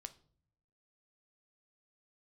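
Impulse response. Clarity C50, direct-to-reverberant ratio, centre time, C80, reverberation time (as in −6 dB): 17.5 dB, 9.5 dB, 4 ms, 22.5 dB, non-exponential decay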